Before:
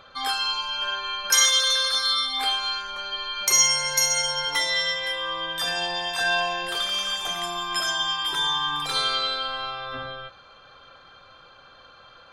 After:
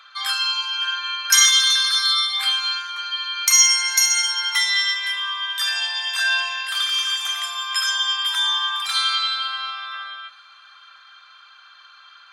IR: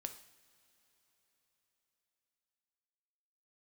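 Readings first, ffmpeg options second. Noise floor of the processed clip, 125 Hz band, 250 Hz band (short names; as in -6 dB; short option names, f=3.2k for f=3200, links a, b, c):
-48 dBFS, under -40 dB, under -40 dB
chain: -filter_complex "[0:a]highpass=f=1.2k:w=0.5412,highpass=f=1.2k:w=1.3066,asplit=2[a][b];[1:a]atrim=start_sample=2205,asetrate=37044,aresample=44100[c];[b][c]afir=irnorm=-1:irlink=0,volume=-6dB[d];[a][d]amix=inputs=2:normalize=0,volume=2dB"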